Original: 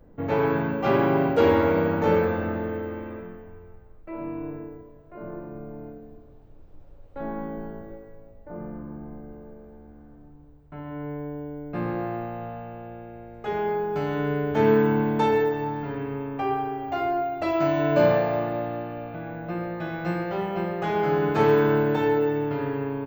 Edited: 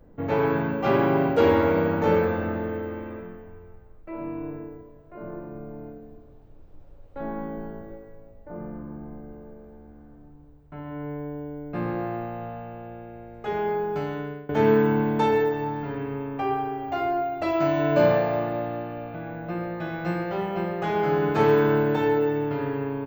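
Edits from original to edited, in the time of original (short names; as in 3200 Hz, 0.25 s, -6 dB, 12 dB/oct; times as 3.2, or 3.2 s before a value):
13.9–14.49 fade out, to -21.5 dB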